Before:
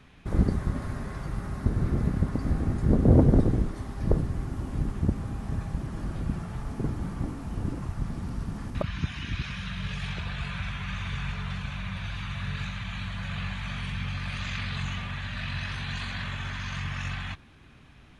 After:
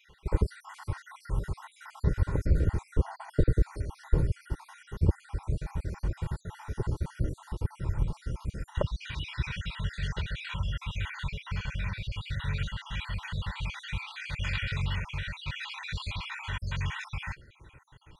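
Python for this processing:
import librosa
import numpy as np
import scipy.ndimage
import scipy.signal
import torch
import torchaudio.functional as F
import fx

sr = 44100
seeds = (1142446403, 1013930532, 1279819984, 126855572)

y = fx.spec_dropout(x, sr, seeds[0], share_pct=57)
y = y + 0.72 * np.pad(y, (int(2.1 * sr / 1000.0), 0))[:len(y)]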